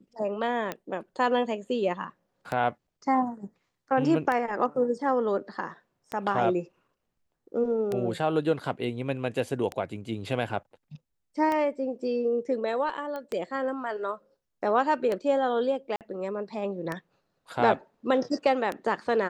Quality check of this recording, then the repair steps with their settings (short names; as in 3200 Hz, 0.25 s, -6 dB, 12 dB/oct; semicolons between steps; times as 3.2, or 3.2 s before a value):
tick 33 1/3 rpm -17 dBFS
13.16 pop -24 dBFS
15.96–16.01 gap 48 ms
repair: de-click; interpolate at 15.96, 48 ms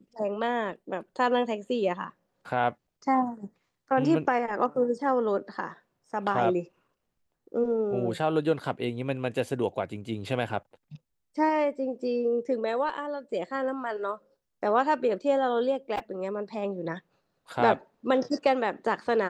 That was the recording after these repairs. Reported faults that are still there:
none